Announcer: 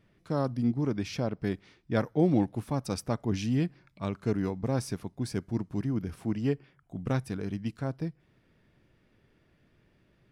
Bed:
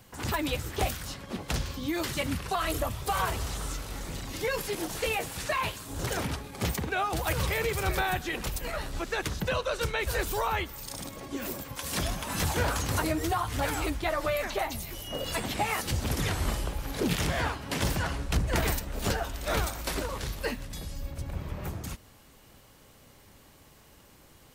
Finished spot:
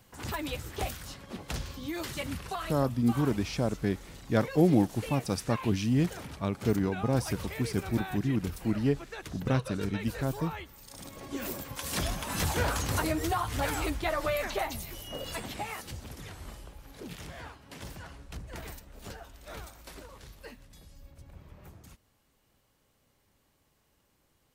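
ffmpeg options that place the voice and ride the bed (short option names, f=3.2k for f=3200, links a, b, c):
-filter_complex "[0:a]adelay=2400,volume=1.5dB[a];[1:a]volume=5dB,afade=t=out:st=2.49:d=0.27:silence=0.501187,afade=t=in:st=10.87:d=0.49:silence=0.316228,afade=t=out:st=14.55:d=1.58:silence=0.199526[b];[a][b]amix=inputs=2:normalize=0"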